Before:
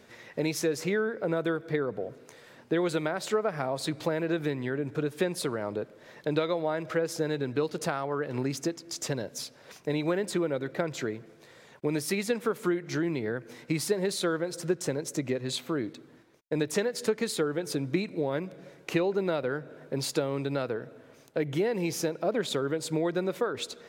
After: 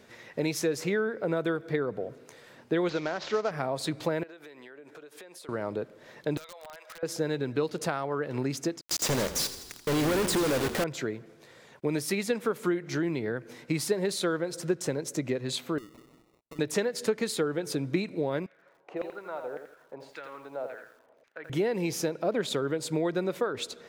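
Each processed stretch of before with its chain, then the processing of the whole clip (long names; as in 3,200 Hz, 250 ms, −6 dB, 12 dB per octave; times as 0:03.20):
0:02.89–0:03.51: variable-slope delta modulation 32 kbit/s + low-shelf EQ 150 Hz −8.5 dB
0:04.23–0:05.49: high-pass filter 480 Hz + downward compressor 12 to 1, threshold −44 dBFS
0:06.37–0:07.03: Bessel high-pass filter 950 Hz, order 8 + downward compressor 8 to 1, threshold −42 dBFS + wrap-around overflow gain 37.5 dB
0:08.81–0:10.84: log-companded quantiser 2 bits + echo with shifted repeats 83 ms, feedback 64%, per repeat −33 Hz, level −12.5 dB
0:15.78–0:16.59: amplitude modulation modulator 120 Hz, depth 50% + downward compressor 4 to 1, threshold −45 dBFS + sample-rate reduction 1,600 Hz
0:18.46–0:21.50: auto-filter band-pass saw down 1.8 Hz 560–2,100 Hz + feedback echo at a low word length 84 ms, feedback 35%, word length 10 bits, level −7 dB
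whole clip: no processing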